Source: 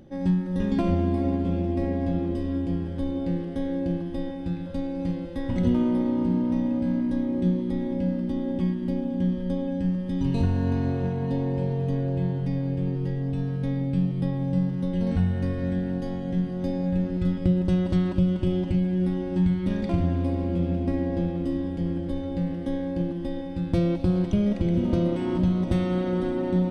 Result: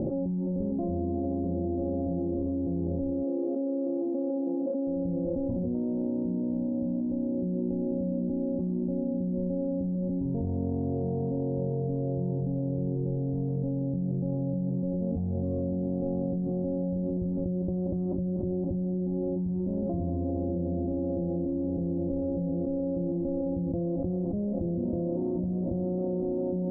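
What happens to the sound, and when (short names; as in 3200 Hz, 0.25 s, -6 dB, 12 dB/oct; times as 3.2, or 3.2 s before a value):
3.23–4.87 brick-wall FIR band-pass 210–1500 Hz
25.4–25.99 LPF 1000 Hz
whole clip: steep low-pass 670 Hz 36 dB/oct; tilt +2.5 dB/oct; fast leveller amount 100%; gain -5.5 dB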